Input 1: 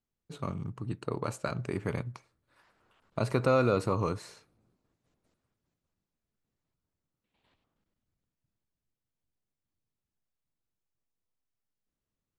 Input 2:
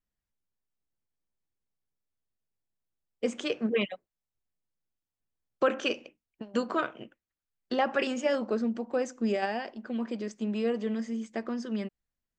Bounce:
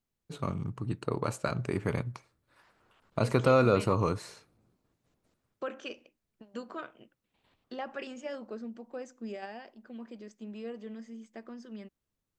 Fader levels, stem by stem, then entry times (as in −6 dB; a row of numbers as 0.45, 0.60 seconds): +2.0, −11.5 decibels; 0.00, 0.00 seconds